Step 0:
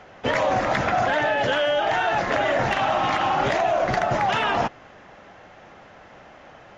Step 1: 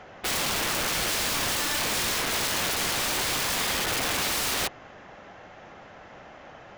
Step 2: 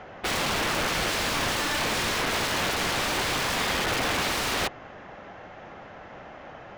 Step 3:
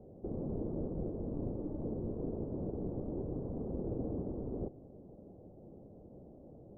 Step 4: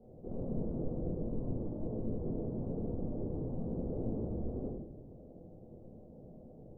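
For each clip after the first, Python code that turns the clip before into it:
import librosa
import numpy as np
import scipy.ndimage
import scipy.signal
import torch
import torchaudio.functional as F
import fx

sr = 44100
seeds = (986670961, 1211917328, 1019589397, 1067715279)

y1 = (np.mod(10.0 ** (22.5 / 20.0) * x + 1.0, 2.0) - 1.0) / 10.0 ** (22.5 / 20.0)
y2 = fx.lowpass(y1, sr, hz=3000.0, slope=6)
y2 = y2 * 10.0 ** (3.5 / 20.0)
y3 = scipy.signal.sosfilt(scipy.signal.cheby2(4, 70, 2000.0, 'lowpass', fs=sr, output='sos'), y2)
y3 = y3 * 10.0 ** (-3.5 / 20.0)
y4 = fx.room_shoebox(y3, sr, seeds[0], volume_m3=140.0, walls='mixed', distance_m=1.7)
y4 = y4 * 10.0 ** (-7.5 / 20.0)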